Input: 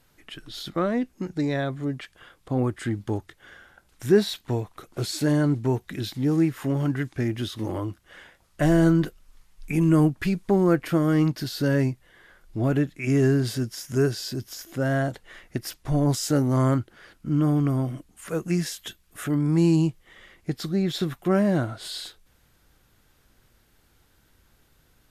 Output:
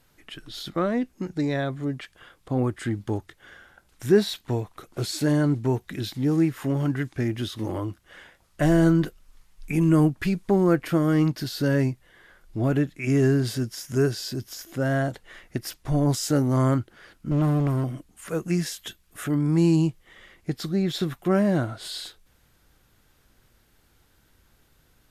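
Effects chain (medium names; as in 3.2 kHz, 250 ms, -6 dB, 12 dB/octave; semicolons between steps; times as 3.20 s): 17.31–17.84 s: comb filter that takes the minimum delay 0.72 ms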